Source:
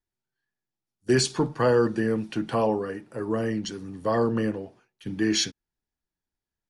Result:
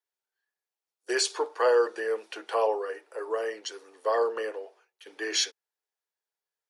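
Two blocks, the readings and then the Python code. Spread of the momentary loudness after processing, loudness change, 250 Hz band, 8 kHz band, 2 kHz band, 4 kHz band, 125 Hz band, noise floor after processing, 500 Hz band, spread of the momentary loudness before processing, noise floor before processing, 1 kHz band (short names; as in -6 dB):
14 LU, -3.0 dB, -17.0 dB, -1.0 dB, -0.5 dB, -1.0 dB, under -40 dB, under -85 dBFS, -1.0 dB, 14 LU, under -85 dBFS, 0.0 dB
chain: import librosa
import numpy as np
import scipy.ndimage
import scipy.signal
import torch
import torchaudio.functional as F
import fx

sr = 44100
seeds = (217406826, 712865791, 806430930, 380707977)

y = scipy.signal.sosfilt(scipy.signal.ellip(4, 1.0, 70, 430.0, 'highpass', fs=sr, output='sos'), x)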